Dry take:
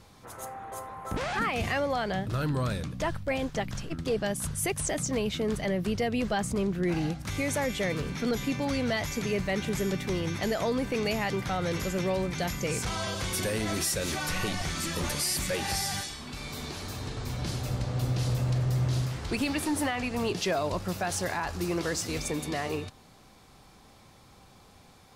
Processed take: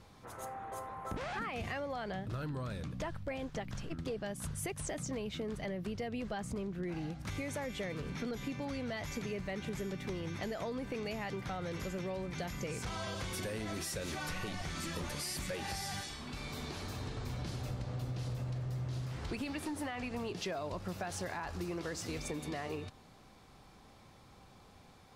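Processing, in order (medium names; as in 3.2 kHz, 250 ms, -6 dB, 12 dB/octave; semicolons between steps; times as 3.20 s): treble shelf 5 kHz -6.5 dB; compression, threshold -33 dBFS, peak gain reduction 9 dB; trim -3 dB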